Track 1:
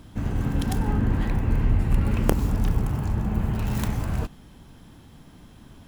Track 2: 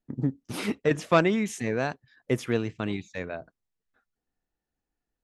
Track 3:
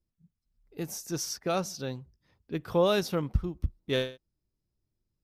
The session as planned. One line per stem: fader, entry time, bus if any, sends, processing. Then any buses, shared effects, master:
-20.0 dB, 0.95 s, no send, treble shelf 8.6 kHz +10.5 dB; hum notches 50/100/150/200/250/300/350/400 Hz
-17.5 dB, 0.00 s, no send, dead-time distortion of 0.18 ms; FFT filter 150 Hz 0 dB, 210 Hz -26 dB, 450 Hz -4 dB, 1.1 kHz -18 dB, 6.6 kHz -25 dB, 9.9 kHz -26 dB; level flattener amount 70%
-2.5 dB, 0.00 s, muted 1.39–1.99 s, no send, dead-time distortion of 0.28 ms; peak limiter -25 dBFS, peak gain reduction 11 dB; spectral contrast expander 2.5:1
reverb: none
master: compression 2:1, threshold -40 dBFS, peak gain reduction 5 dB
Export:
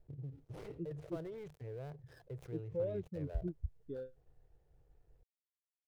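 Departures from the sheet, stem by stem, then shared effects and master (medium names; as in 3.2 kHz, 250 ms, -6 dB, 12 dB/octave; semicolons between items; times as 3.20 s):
stem 1: muted; master: missing compression 2:1, threshold -40 dBFS, peak gain reduction 5 dB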